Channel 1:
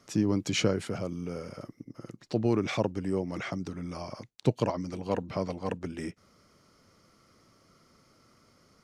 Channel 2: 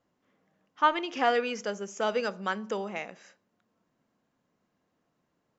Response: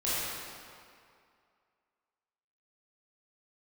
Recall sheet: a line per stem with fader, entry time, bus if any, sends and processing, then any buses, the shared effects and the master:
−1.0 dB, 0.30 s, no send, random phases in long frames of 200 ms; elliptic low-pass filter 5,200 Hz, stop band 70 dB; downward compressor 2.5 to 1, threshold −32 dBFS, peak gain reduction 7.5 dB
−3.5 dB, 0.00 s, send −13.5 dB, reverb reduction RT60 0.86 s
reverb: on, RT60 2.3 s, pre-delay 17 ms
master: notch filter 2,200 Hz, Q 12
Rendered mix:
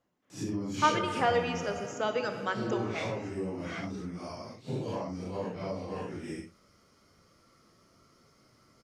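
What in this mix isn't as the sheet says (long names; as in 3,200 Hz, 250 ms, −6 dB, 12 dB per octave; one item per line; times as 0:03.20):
stem 1: missing elliptic low-pass filter 5,200 Hz, stop band 70 dB
master: missing notch filter 2,200 Hz, Q 12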